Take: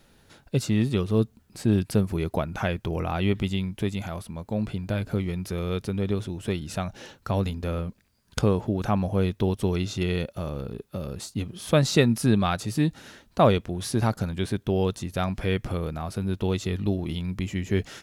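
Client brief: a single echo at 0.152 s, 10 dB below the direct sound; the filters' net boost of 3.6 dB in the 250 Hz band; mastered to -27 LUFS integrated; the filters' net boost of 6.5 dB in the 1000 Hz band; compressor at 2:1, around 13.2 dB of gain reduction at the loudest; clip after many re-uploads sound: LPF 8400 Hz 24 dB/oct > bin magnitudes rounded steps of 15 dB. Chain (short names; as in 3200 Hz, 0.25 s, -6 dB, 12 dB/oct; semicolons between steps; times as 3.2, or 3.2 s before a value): bell 250 Hz +4.5 dB; bell 1000 Hz +8.5 dB; compressor 2:1, threshold -34 dBFS; LPF 8400 Hz 24 dB/oct; echo 0.152 s -10 dB; bin magnitudes rounded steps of 15 dB; gain +6 dB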